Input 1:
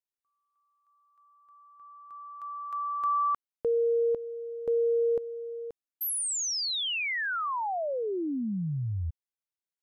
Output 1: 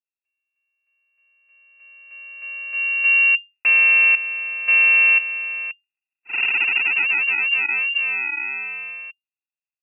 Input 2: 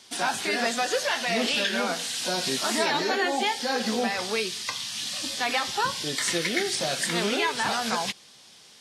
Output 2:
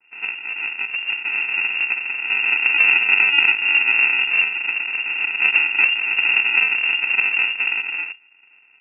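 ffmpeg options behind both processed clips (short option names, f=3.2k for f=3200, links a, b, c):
-af "lowshelf=f=83:g=-8,dynaudnorm=f=300:g=13:m=10.5dB,aresample=16000,acrusher=samples=29:mix=1:aa=0.000001,aresample=44100,lowpass=f=2.4k:t=q:w=0.5098,lowpass=f=2.4k:t=q:w=0.6013,lowpass=f=2.4k:t=q:w=0.9,lowpass=f=2.4k:t=q:w=2.563,afreqshift=-2800,adynamicequalizer=threshold=0.0501:dfrequency=2100:dqfactor=0.7:tfrequency=2100:tqfactor=0.7:attack=5:release=100:ratio=0.375:range=2.5:mode=boostabove:tftype=highshelf,volume=-2.5dB"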